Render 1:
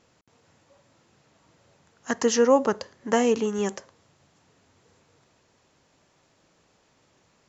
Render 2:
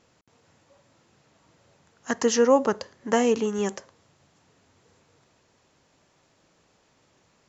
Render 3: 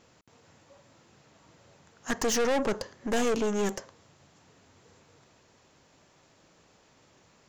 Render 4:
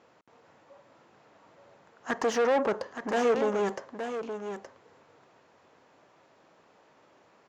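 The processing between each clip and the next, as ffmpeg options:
ffmpeg -i in.wav -af anull out.wav
ffmpeg -i in.wav -af "aeval=exprs='(tanh(25.1*val(0)+0.4)-tanh(0.4))/25.1':channel_layout=same,volume=4dB" out.wav
ffmpeg -i in.wav -af "bandpass=frequency=800:width_type=q:width=0.6:csg=0,aecho=1:1:871:0.376,volume=3.5dB" out.wav

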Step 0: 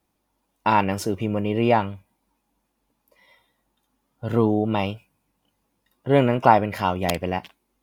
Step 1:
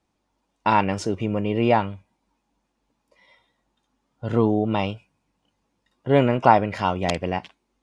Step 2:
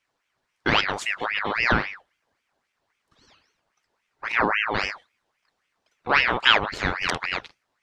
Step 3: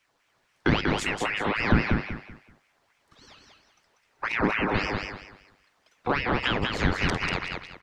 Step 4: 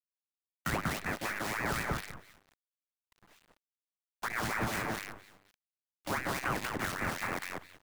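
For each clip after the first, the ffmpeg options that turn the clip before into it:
ffmpeg -i in.wav -af "lowpass=frequency=8000:width=0.5412,lowpass=frequency=8000:width=1.3066" out.wav
ffmpeg -i in.wav -af "equalizer=frequency=3600:width_type=o:width=0.99:gain=5.5,aeval=exprs='val(0)*sin(2*PI*1500*n/s+1500*0.6/3.7*sin(2*PI*3.7*n/s))':channel_layout=same" out.wav
ffmpeg -i in.wav -filter_complex "[0:a]acrossover=split=360[link_01][link_02];[link_02]acompressor=threshold=-32dB:ratio=6[link_03];[link_01][link_03]amix=inputs=2:normalize=0,asplit=2[link_04][link_05];[link_05]aecho=0:1:191|382|573|764:0.631|0.177|0.0495|0.0139[link_06];[link_04][link_06]amix=inputs=2:normalize=0,volume=5.5dB" out.wav
ffmpeg -i in.wav -filter_complex "[0:a]highpass=frequency=270:width_type=q:width=0.5412,highpass=frequency=270:width_type=q:width=1.307,lowpass=frequency=2500:width_type=q:width=0.5176,lowpass=frequency=2500:width_type=q:width=0.7071,lowpass=frequency=2500:width_type=q:width=1.932,afreqshift=-180,acrusher=bits=6:dc=4:mix=0:aa=0.000001,acrossover=split=1700[link_01][link_02];[link_01]aeval=exprs='val(0)*(1-0.7/2+0.7/2*cos(2*PI*3.7*n/s))':channel_layout=same[link_03];[link_02]aeval=exprs='val(0)*(1-0.7/2-0.7/2*cos(2*PI*3.7*n/s))':channel_layout=same[link_04];[link_03][link_04]amix=inputs=2:normalize=0,volume=-2dB" out.wav

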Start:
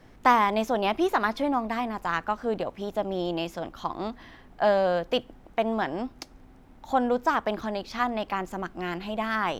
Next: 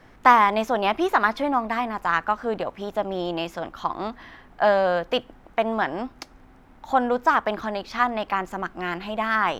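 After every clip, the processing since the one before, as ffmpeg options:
ffmpeg -i in.wav -af "equalizer=frequency=1400:width=0.66:gain=6.5" out.wav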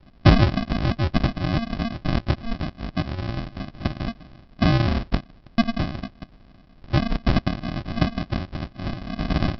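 ffmpeg -i in.wav -af "aexciter=amount=9.3:drive=4.1:freq=4100,aresample=11025,acrusher=samples=24:mix=1:aa=0.000001,aresample=44100" out.wav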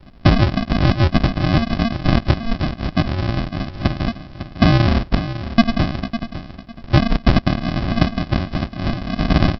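ffmpeg -i in.wav -af "alimiter=limit=-10dB:level=0:latency=1:release=457,aecho=1:1:553|1106|1659:0.251|0.0553|0.0122,volume=7.5dB" out.wav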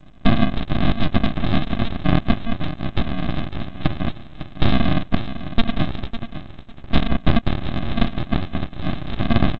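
ffmpeg -i in.wav -af "aresample=8000,aeval=exprs='abs(val(0))':channel_layout=same,aresample=44100" -ar 16000 -c:a g722 out.g722

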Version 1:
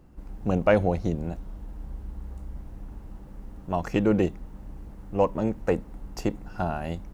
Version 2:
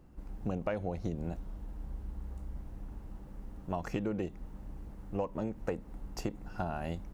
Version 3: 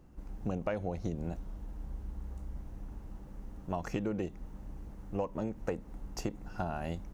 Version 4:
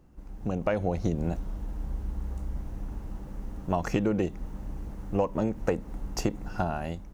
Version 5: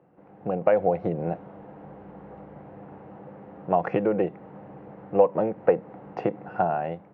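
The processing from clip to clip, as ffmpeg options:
ffmpeg -i in.wav -af "acompressor=threshold=-26dB:ratio=12,volume=-4dB" out.wav
ffmpeg -i in.wav -af "equalizer=frequency=6200:width=3.7:gain=4" out.wav
ffmpeg -i in.wav -af "dynaudnorm=framelen=120:gausssize=9:maxgain=8dB" out.wav
ffmpeg -i in.wav -af "highpass=frequency=140:width=0.5412,highpass=frequency=140:width=1.3066,equalizer=frequency=240:width_type=q:width=4:gain=-9,equalizer=frequency=500:width_type=q:width=4:gain=8,equalizer=frequency=740:width_type=q:width=4:gain=7,lowpass=frequency=2400:width=0.5412,lowpass=frequency=2400:width=1.3066,volume=2dB" out.wav

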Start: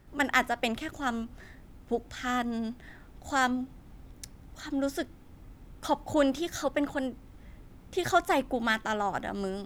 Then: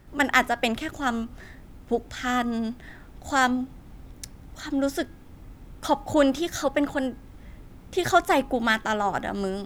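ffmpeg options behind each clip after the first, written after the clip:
ffmpeg -i in.wav -af "bandreject=frequency=411.5:width_type=h:width=4,bandreject=frequency=823:width_type=h:width=4,bandreject=frequency=1234.5:width_type=h:width=4,bandreject=frequency=1646:width_type=h:width=4,volume=5dB" out.wav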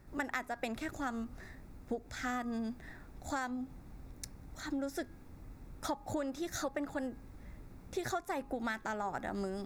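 ffmpeg -i in.wav -af "equalizer=frequency=3100:width=6.5:gain=-14,acompressor=threshold=-27dB:ratio=10,volume=-6dB" out.wav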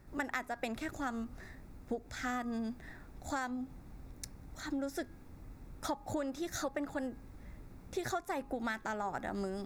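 ffmpeg -i in.wav -af anull out.wav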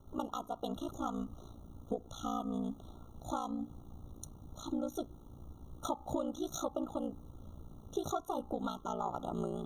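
ffmpeg -i in.wav -af "aeval=exprs='val(0)*sin(2*PI*29*n/s)':channel_layout=same,afftfilt=real='re*eq(mod(floor(b*sr/1024/1400),2),0)':imag='im*eq(mod(floor(b*sr/1024/1400),2),0)':win_size=1024:overlap=0.75,volume=3.5dB" out.wav

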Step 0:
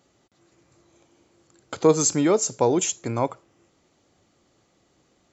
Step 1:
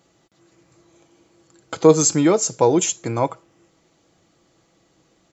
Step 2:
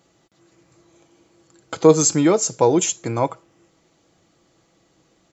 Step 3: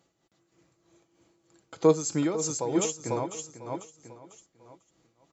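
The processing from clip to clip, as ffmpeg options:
ffmpeg -i in.wav -af "aecho=1:1:6.1:0.36,volume=3dB" out.wav
ffmpeg -i in.wav -af anull out.wav
ffmpeg -i in.wav -filter_complex "[0:a]asplit=2[link_01][link_02];[link_02]aecho=0:1:497|994|1491|1988:0.447|0.165|0.0612|0.0226[link_03];[link_01][link_03]amix=inputs=2:normalize=0,tremolo=f=3.2:d=0.63,volume=-8dB" out.wav

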